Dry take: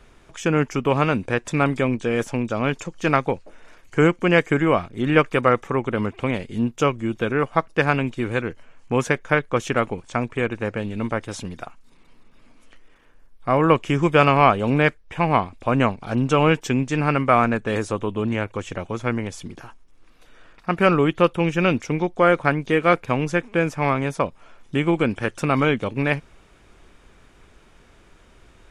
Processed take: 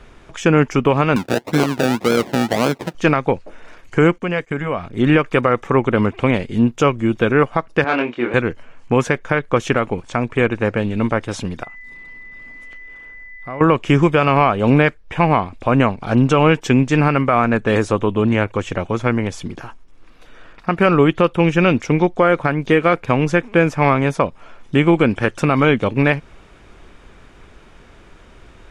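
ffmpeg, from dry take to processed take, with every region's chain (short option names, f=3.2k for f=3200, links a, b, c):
-filter_complex "[0:a]asettb=1/sr,asplit=3[a][b][c];[a]atrim=end=1.164[d];[b]atrim=start=1.16:end=2.95,asetpts=PTS-STARTPTS,afade=t=in:d=0.004:c=qsin,afade=t=out:st=1.786:d=0.004:c=qsin,acrusher=samples=33:mix=1:aa=0.000001:lfo=1:lforange=19.8:lforate=1.8,highpass=150[e];[c]atrim=start=2.946[f];[d][e]acrossfade=d=0.004:c1=hsin:c2=qsin[g];[g][f]acrossfade=d=0.004:c1=qsin:c2=hsin,asettb=1/sr,asplit=3[h][i][j];[h]atrim=end=4.184[k];[i]atrim=start=4.18:end=4.87,asetpts=PTS-STARTPTS,afade=t=in:d=0.004:c=qsin,afade=t=out:st=0.686:d=0.004:c=qsin,bandreject=f=330:w=6.8,acompressor=threshold=-33dB:ratio=2:attack=3.2:release=140:knee=1:detection=peak,agate=range=-20dB:threshold=-41dB:ratio=16:release=100:detection=peak[l];[j]atrim=start=4.866[m];[k][l]acrossfade=d=0.004:c1=hsin:c2=qsin[n];[n][m]acrossfade=d=0.004:c1=qsin:c2=hsin,asettb=1/sr,asplit=3[o][p][q];[o]atrim=end=7.844[r];[p]atrim=start=7.84:end=8.34,asetpts=PTS-STARTPTS,afade=t=in:d=0.004:c=qsin,afade=t=out:st=0.496:d=0.004:c=qsin,volume=15.5dB,asoftclip=hard,volume=-15.5dB,highpass=350,lowpass=3k,asplit=2[s][t];[t]adelay=25,volume=-4dB[u];[s][u]amix=inputs=2:normalize=0,atrim=end_sample=22050[v];[q]atrim=start=8.336[w];[r][v]acrossfade=d=0.004:c1=hsin:c2=qsin[x];[x][w]acrossfade=d=0.004:c1=qsin:c2=hsin,asettb=1/sr,asplit=3[y][z][aa];[y]atrim=end=11.634[ab];[z]atrim=start=11.63:end=13.61,asetpts=PTS-STARTPTS,afade=t=in:d=0.004:c=qsin,afade=t=out:st=1.976:d=0.004:c=qsin,acompressor=threshold=-47dB:ratio=2:attack=3.2:release=140:knee=1:detection=peak,aeval=exprs='val(0)+0.00708*sin(2*PI*2000*n/s)':c=same[ac];[aa]atrim=start=13.606[ad];[ab][ac]acrossfade=d=0.004:c1=hsin:c2=qsin[ae];[ae][ad]acrossfade=d=0.004:c1=qsin:c2=hsin,highshelf=f=6.9k:g=-9.5,alimiter=limit=-11dB:level=0:latency=1:release=185,volume=7.5dB"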